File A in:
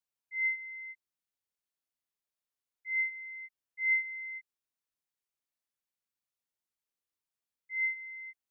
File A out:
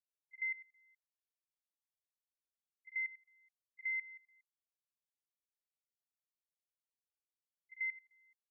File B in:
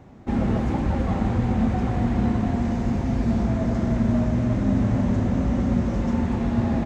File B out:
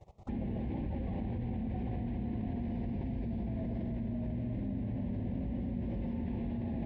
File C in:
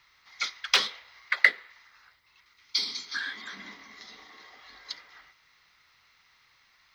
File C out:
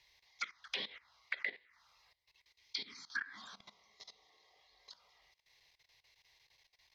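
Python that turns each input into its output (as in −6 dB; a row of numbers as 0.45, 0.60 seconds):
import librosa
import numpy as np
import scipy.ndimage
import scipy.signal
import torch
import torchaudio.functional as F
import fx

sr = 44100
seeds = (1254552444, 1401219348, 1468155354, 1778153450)

y = fx.env_phaser(x, sr, low_hz=220.0, high_hz=1300.0, full_db=-24.5)
y = fx.level_steps(y, sr, step_db=17)
y = fx.env_lowpass_down(y, sr, base_hz=2800.0, full_db=-33.0)
y = y * librosa.db_to_amplitude(-1.5)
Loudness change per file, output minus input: −7.0, −14.0, −15.0 LU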